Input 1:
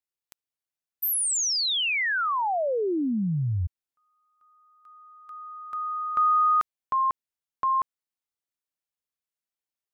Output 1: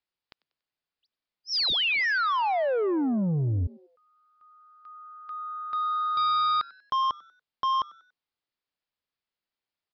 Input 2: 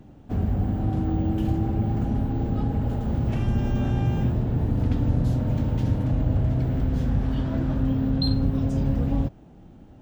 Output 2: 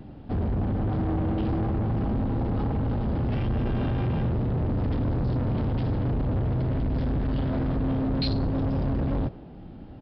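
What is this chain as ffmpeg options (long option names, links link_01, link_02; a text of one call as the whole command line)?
ffmpeg -i in.wav -filter_complex "[0:a]acontrast=50,aresample=11025,asoftclip=type=tanh:threshold=-22dB,aresample=44100,asplit=4[link_01][link_02][link_03][link_04];[link_02]adelay=95,afreqshift=140,volume=-23dB[link_05];[link_03]adelay=190,afreqshift=280,volume=-31.4dB[link_06];[link_04]adelay=285,afreqshift=420,volume=-39.8dB[link_07];[link_01][link_05][link_06][link_07]amix=inputs=4:normalize=0,volume=-1dB" out.wav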